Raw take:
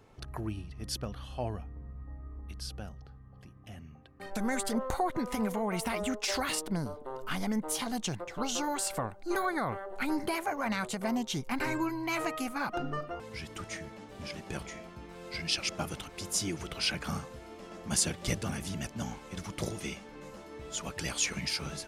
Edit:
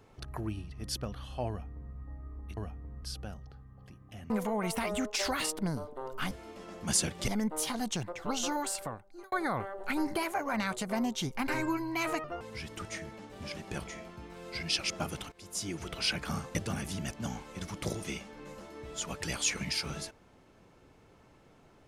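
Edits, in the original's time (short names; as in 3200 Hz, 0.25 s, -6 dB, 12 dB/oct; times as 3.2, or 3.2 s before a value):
1.49–1.94 copy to 2.57
3.85–5.39 cut
8.65–9.44 fade out
12.36–13.03 cut
16.11–16.69 fade in, from -17 dB
17.34–18.31 move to 7.4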